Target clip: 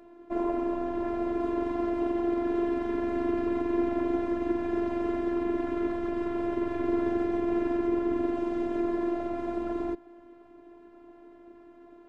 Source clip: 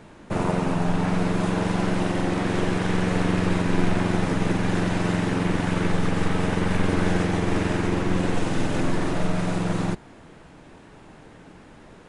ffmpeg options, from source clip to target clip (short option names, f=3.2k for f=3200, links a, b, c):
-af "bandpass=f=340:t=q:w=0.71:csg=0,afftfilt=real='hypot(re,im)*cos(PI*b)':imag='0':win_size=512:overlap=0.75,volume=2dB"